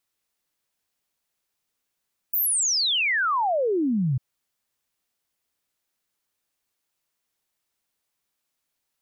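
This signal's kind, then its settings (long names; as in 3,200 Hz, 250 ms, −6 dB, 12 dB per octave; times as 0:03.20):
exponential sine sweep 16,000 Hz → 120 Hz 1.85 s −20 dBFS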